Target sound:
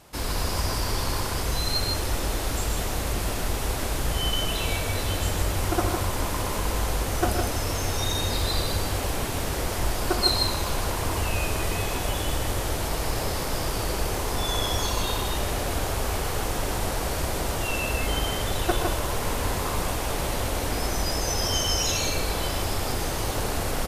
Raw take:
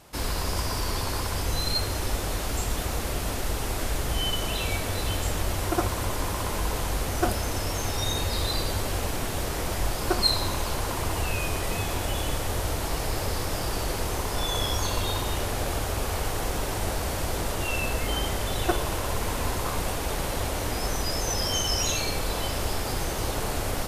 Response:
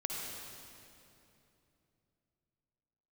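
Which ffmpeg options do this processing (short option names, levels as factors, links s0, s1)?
-af "aecho=1:1:122.4|157.4:0.282|0.562"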